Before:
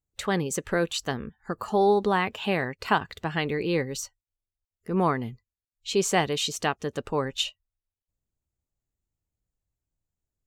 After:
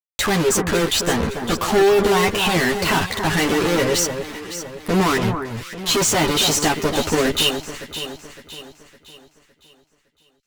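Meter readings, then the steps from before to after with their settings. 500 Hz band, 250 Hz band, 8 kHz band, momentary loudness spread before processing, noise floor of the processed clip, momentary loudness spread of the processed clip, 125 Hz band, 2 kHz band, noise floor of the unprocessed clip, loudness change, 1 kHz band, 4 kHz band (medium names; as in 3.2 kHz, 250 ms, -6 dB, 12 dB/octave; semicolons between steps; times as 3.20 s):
+8.0 dB, +8.5 dB, +13.0 dB, 12 LU, -65 dBFS, 14 LU, +8.0 dB, +9.0 dB, under -85 dBFS, +8.0 dB, +6.0 dB, +11.5 dB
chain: fuzz box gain 44 dB, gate -41 dBFS; chorus voices 4, 0.21 Hz, delay 11 ms, depth 1.9 ms; echo whose repeats swap between lows and highs 280 ms, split 1.6 kHz, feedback 64%, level -7 dB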